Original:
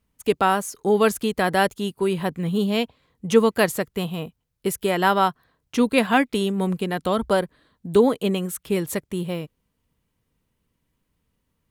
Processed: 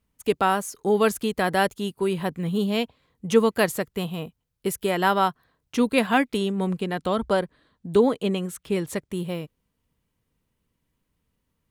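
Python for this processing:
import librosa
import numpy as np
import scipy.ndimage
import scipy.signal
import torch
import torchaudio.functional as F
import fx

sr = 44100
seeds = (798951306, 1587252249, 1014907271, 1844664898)

y = fx.peak_eq(x, sr, hz=15000.0, db=-12.0, octaves=0.67, at=(6.37, 9.11))
y = y * librosa.db_to_amplitude(-2.0)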